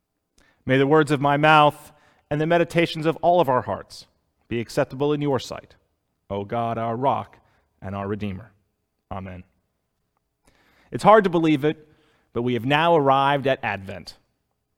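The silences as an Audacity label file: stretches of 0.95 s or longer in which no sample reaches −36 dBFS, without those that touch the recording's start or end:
9.410000	10.920000	silence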